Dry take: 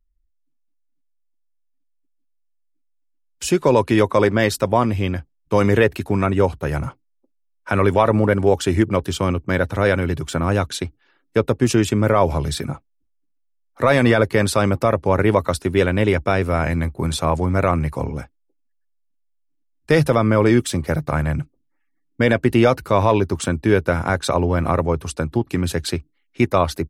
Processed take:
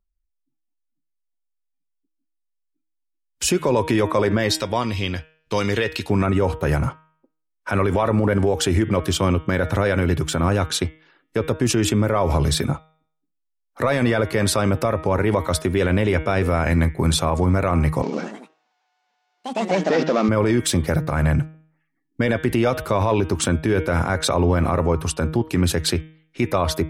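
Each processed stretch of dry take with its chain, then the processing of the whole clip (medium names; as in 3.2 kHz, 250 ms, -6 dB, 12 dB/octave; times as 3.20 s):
4.51–6.10 s: peaking EQ 4.2 kHz +14.5 dB 1.7 oct + compression 1.5:1, threshold -24 dBFS + feedback comb 470 Hz, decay 0.16 s, mix 50%
18.02–20.29 s: CVSD coder 32 kbps + ever faster or slower copies 105 ms, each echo +3 st, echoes 3, each echo -6 dB + brick-wall FIR high-pass 170 Hz
whole clip: spectral noise reduction 13 dB; de-hum 157.5 Hz, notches 23; peak limiter -14 dBFS; trim +4.5 dB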